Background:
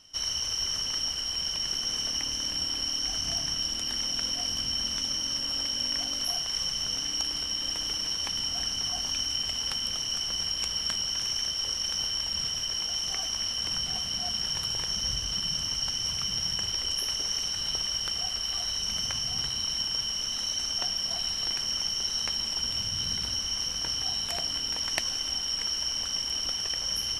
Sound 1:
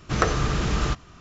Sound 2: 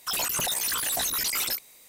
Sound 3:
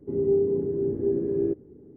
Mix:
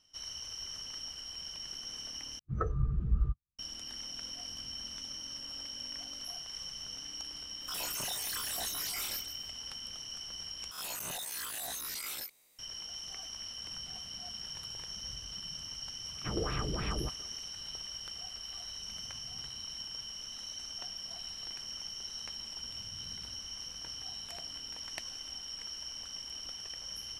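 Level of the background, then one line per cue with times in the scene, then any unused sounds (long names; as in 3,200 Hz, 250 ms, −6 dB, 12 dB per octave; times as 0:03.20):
background −12.5 dB
0:02.39: overwrite with 1 −13 dB + every bin expanded away from the loudest bin 2.5 to 1
0:07.61: mix in 2 −13 dB + loudspeakers that aren't time-aligned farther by 10 metres −1 dB, 56 metres −10 dB
0:10.71: overwrite with 2 −15 dB + peak hold with a rise ahead of every peak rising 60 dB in 0.50 s
0:16.15: mix in 1 −12.5 dB + auto-filter low-pass sine 3.2 Hz 340–2,900 Hz
not used: 3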